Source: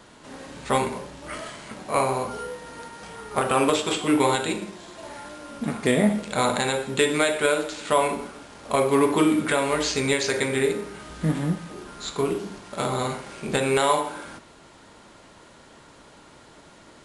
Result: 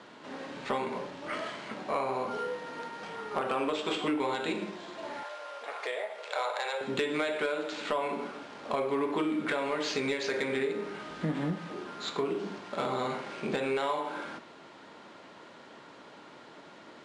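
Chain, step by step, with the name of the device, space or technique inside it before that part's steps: AM radio (BPF 200–4100 Hz; compressor 5:1, threshold -27 dBFS, peak gain reduction 11 dB; soft clip -18 dBFS, distortion -22 dB); 5.23–6.81 steep high-pass 480 Hz 36 dB/oct

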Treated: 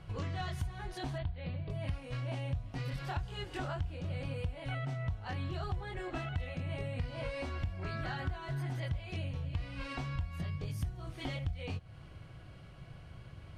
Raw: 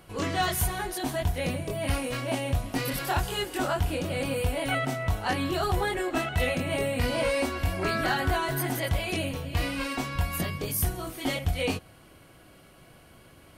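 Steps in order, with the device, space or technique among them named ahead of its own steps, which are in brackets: jukebox (LPF 5000 Hz 12 dB/oct; resonant low shelf 180 Hz +10 dB, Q 1.5; compressor 4:1, threshold -33 dBFS, peak gain reduction 18.5 dB); 1.18–1.7 Chebyshev low-pass 4600 Hz, order 6; gain -3.5 dB

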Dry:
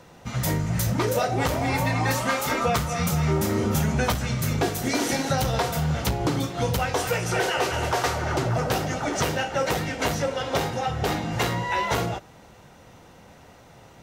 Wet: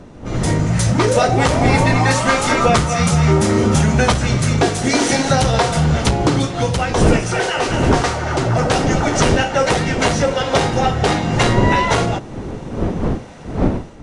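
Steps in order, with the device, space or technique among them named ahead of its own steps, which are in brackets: smartphone video outdoors (wind noise 320 Hz; AGC gain up to 11.5 dB; AAC 96 kbps 22050 Hz)

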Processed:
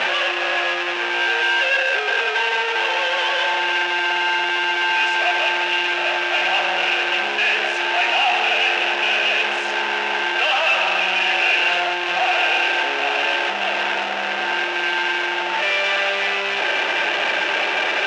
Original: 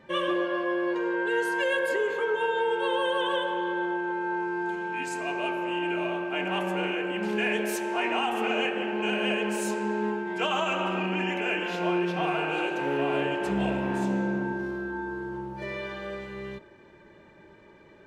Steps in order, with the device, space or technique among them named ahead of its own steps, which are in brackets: home computer beeper (infinite clipping; speaker cabinet 660–4800 Hz, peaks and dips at 730 Hz +8 dB, 1100 Hz -4 dB, 1600 Hz +5 dB, 2700 Hz +10 dB, 4500 Hz -6 dB); gain +8.5 dB

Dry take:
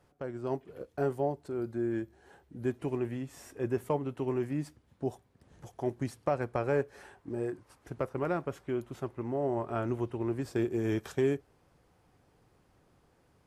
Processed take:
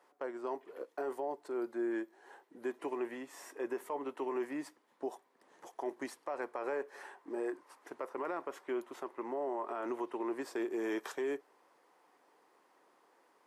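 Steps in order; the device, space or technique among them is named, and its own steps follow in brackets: laptop speaker (HPF 310 Hz 24 dB/oct; bell 1000 Hz +8.5 dB 0.55 oct; bell 1900 Hz +5.5 dB 0.29 oct; limiter -27.5 dBFS, peak gain reduction 12 dB); gain -1 dB

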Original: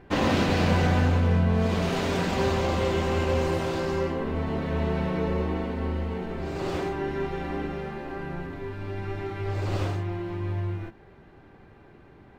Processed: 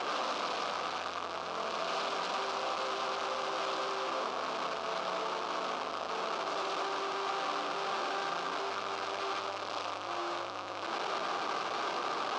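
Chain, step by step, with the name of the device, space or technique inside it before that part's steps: home computer beeper (infinite clipping; speaker cabinet 540–5400 Hz, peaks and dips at 670 Hz +4 dB, 1200 Hz +9 dB, 1900 Hz -10 dB); gain -5.5 dB

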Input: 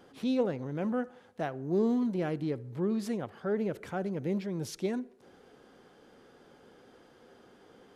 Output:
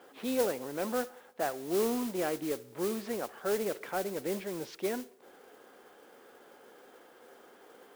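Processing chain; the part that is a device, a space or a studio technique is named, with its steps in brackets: carbon microphone (BPF 400–3000 Hz; soft clip -25 dBFS, distortion -21 dB; modulation noise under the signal 12 dB); gain +4 dB

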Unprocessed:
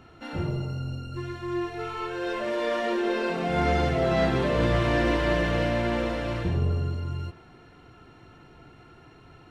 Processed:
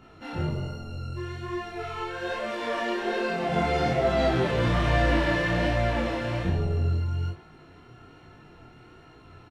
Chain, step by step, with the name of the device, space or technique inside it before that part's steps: double-tracked vocal (doubler 33 ms -3.5 dB; chorus 1.2 Hz, delay 18.5 ms, depth 6.7 ms); gain +2 dB

